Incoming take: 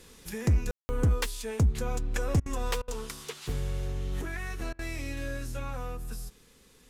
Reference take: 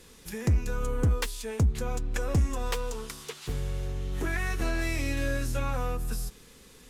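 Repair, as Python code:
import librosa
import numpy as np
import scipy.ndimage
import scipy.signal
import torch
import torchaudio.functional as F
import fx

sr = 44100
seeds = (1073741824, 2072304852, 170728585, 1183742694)

y = fx.fix_ambience(x, sr, seeds[0], print_start_s=6.31, print_end_s=6.81, start_s=0.71, end_s=0.89)
y = fx.fix_interpolate(y, sr, at_s=(2.4, 2.82, 4.73), length_ms=58.0)
y = fx.fix_level(y, sr, at_s=4.21, step_db=6.0)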